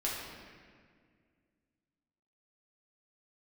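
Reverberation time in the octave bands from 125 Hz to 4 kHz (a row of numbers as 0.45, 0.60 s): 2.6, 2.7, 2.1, 1.7, 1.8, 1.3 s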